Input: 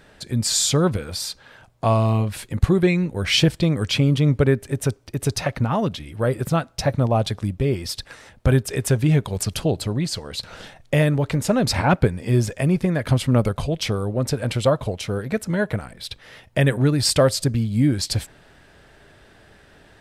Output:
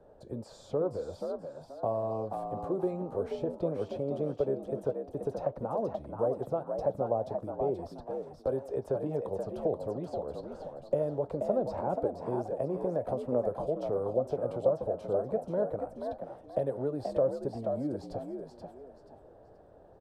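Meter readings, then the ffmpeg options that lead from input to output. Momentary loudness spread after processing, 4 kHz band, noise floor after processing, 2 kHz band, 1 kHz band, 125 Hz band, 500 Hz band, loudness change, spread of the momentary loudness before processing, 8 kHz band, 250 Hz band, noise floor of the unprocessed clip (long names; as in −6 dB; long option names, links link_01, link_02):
9 LU, below −30 dB, −55 dBFS, below −25 dB, −9.0 dB, −21.5 dB, −6.0 dB, −12.0 dB, 9 LU, below −35 dB, −15.0 dB, −52 dBFS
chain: -filter_complex "[0:a]acrossover=split=320|4800[link_01][link_02][link_03];[link_01]acompressor=threshold=-29dB:ratio=4[link_04];[link_02]acompressor=threshold=-26dB:ratio=4[link_05];[link_03]acompressor=threshold=-40dB:ratio=4[link_06];[link_04][link_05][link_06]amix=inputs=3:normalize=0,highshelf=frequency=2600:gain=8.5,acrossover=split=130[link_07][link_08];[link_07]acompressor=threshold=-39dB:ratio=6[link_09];[link_08]flanger=delay=5:depth=4.2:regen=-78:speed=1.6:shape=sinusoidal[link_10];[link_09][link_10]amix=inputs=2:normalize=0,firequalizer=gain_entry='entry(170,0);entry(520,14);entry(2000,-23)':delay=0.05:min_phase=1,asplit=5[link_11][link_12][link_13][link_14][link_15];[link_12]adelay=480,afreqshift=64,volume=-6dB[link_16];[link_13]adelay=960,afreqshift=128,volume=-16.5dB[link_17];[link_14]adelay=1440,afreqshift=192,volume=-26.9dB[link_18];[link_15]adelay=1920,afreqshift=256,volume=-37.4dB[link_19];[link_11][link_16][link_17][link_18][link_19]amix=inputs=5:normalize=0,volume=-8.5dB"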